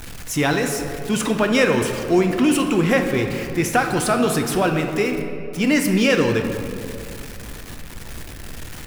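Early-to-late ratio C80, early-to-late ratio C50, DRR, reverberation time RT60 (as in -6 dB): 7.0 dB, 6.0 dB, 4.0 dB, 2.7 s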